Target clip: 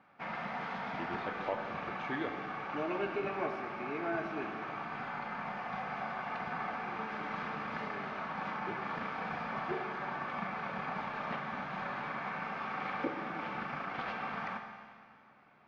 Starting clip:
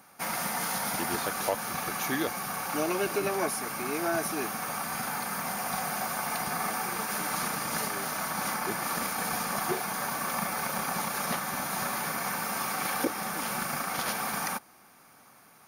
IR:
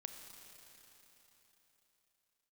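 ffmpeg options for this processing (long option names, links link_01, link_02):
-filter_complex "[0:a]lowpass=frequency=3000:width=0.5412,lowpass=frequency=3000:width=1.3066[link_01];[1:a]atrim=start_sample=2205,asetrate=88200,aresample=44100[link_02];[link_01][link_02]afir=irnorm=-1:irlink=0,volume=4.5dB"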